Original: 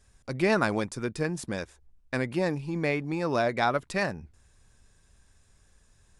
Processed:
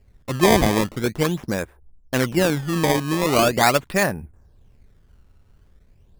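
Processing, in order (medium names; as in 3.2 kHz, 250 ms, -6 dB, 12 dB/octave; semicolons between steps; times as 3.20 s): level-controlled noise filter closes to 590 Hz, open at -22 dBFS; decimation with a swept rate 18×, swing 160% 0.42 Hz; trim +8.5 dB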